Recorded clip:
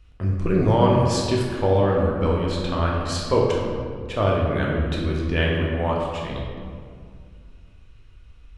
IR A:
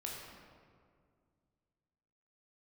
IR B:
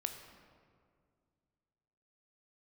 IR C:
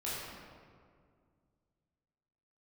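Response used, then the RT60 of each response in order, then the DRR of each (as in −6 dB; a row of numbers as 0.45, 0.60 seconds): A; 2.1, 2.1, 2.1 seconds; −3.0, 5.5, −9.5 decibels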